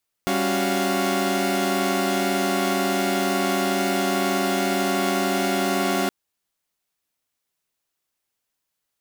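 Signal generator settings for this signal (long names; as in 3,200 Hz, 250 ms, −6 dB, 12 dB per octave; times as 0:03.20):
held notes G3/C#4/F#4/F5 saw, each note −23.5 dBFS 5.82 s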